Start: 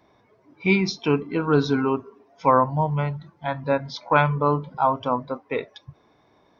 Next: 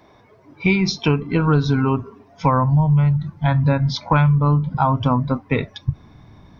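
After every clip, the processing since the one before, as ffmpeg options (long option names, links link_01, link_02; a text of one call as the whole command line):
ffmpeg -i in.wav -af "asubboost=boost=11.5:cutoff=140,acompressor=threshold=-22dB:ratio=6,volume=8.5dB" out.wav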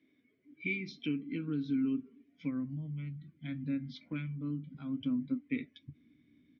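ffmpeg -i in.wav -filter_complex "[0:a]asplit=3[link_01][link_02][link_03];[link_01]bandpass=frequency=270:width_type=q:width=8,volume=0dB[link_04];[link_02]bandpass=frequency=2290:width_type=q:width=8,volume=-6dB[link_05];[link_03]bandpass=frequency=3010:width_type=q:width=8,volume=-9dB[link_06];[link_04][link_05][link_06]amix=inputs=3:normalize=0,asplit=2[link_07][link_08];[link_08]adelay=13,volume=-12dB[link_09];[link_07][link_09]amix=inputs=2:normalize=0,volume=-6.5dB" out.wav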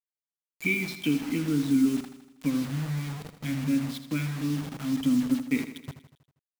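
ffmpeg -i in.wav -filter_complex "[0:a]acrusher=bits=7:mix=0:aa=0.000001,asplit=2[link_01][link_02];[link_02]aecho=0:1:80|160|240|320|400|480:0.266|0.149|0.0834|0.0467|0.0262|0.0147[link_03];[link_01][link_03]amix=inputs=2:normalize=0,volume=8.5dB" out.wav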